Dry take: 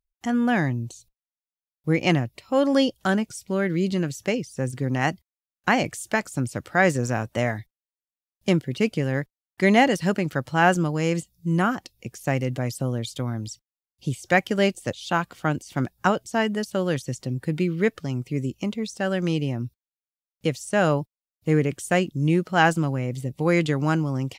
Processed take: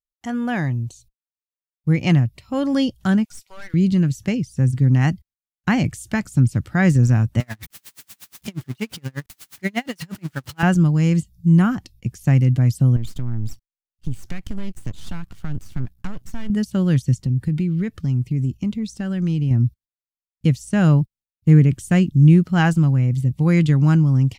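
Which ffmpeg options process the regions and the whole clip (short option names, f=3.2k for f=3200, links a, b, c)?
-filter_complex "[0:a]asettb=1/sr,asplit=3[a][b][c];[a]atrim=end=3.254[d];[b]atrim=start=3.25:end=3.74,asetpts=PTS-STARTPTS,afade=t=in:d=0.004:c=qsin,afade=t=out:st=0.486:d=0.004:c=qsin,highpass=f=680:w=0.5412,highpass=f=680:w=1.3066,aeval=exprs='(tanh(44.7*val(0)+0.35)-tanh(0.35))/44.7':c=same[e];[c]atrim=start=3.736[f];[d][e]acrossfade=d=0.004:c1=hsin:c2=qsin[g];[g][f]acrossfade=d=0.004:c1=qsin:c2=hsin,asettb=1/sr,asplit=3[h][i][j];[h]atrim=end=7.404[k];[i]atrim=start=7.4:end=10.63,asetpts=PTS-STARTPTS,afade=t=in:d=0.004:c=qsin,afade=t=out:st=3.226:d=0.004:c=qsin,aeval=exprs='val(0)+0.5*0.0596*sgn(val(0))':c=same,highpass=f=620:p=1,aeval=exprs='val(0)*pow(10,-36*(0.5-0.5*cos(2*PI*8.4*n/s))/20)':c=same[l];[j]atrim=start=10.626[m];[k][l]acrossfade=d=0.004:c1=hsin:c2=qsin[n];[n][m]acrossfade=d=0.004:c1=qsin:c2=hsin,asettb=1/sr,asplit=3[o][p][q];[o]atrim=end=12.964[r];[p]atrim=start=12.96:end=16.5,asetpts=PTS-STARTPTS,afade=t=in:d=0.004:c=qsin,afade=t=out:st=3.536:d=0.004:c=qsin,acompressor=threshold=-29dB:ratio=5:attack=3.2:release=140:knee=1:detection=peak,aeval=exprs='max(val(0),0)':c=same[s];[q]atrim=start=16.496[t];[r][s]acrossfade=d=0.004:c1=hsin:c2=qsin[u];[u][t]acrossfade=d=0.004:c1=qsin:c2=hsin,asettb=1/sr,asplit=3[v][w][x];[v]atrim=end=17.144[y];[w]atrim=start=17.14:end=19.51,asetpts=PTS-STARTPTS,afade=t=in:d=0.004:c=qsin,afade=t=out:st=2.366:d=0.004:c=qsin,agate=range=-6dB:threshold=-48dB:ratio=16:release=100:detection=peak,acompressor=threshold=-30dB:ratio=2:attack=3.2:release=140:knee=1:detection=peak[z];[x]atrim=start=19.506[aa];[y][z]acrossfade=d=0.004:c1=hsin:c2=qsin[ab];[ab][aa]acrossfade=d=0.004:c1=qsin:c2=hsin,agate=range=-15dB:threshold=-53dB:ratio=16:detection=peak,asubboost=boost=9.5:cutoff=170,volume=-1.5dB"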